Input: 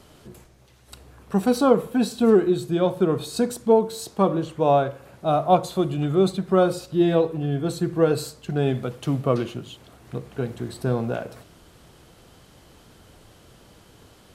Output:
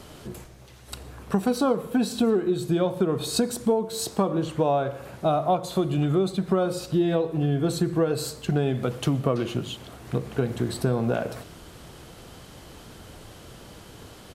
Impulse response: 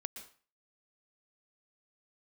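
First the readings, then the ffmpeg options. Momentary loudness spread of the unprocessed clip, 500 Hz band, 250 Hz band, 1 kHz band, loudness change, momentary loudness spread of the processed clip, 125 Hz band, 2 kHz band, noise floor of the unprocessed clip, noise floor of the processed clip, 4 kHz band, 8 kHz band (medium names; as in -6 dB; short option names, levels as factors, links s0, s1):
11 LU, -4.0 dB, -2.0 dB, -4.0 dB, -3.0 dB, 22 LU, 0.0 dB, -1.0 dB, -53 dBFS, -47 dBFS, +1.5 dB, +2.5 dB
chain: -filter_complex "[0:a]asplit=2[s0][s1];[s1]adelay=87.46,volume=0.0447,highshelf=f=4000:g=-1.97[s2];[s0][s2]amix=inputs=2:normalize=0,acompressor=threshold=0.0501:ratio=6,asplit=2[s3][s4];[1:a]atrim=start_sample=2205[s5];[s4][s5]afir=irnorm=-1:irlink=0,volume=0.282[s6];[s3][s6]amix=inputs=2:normalize=0,volume=1.68"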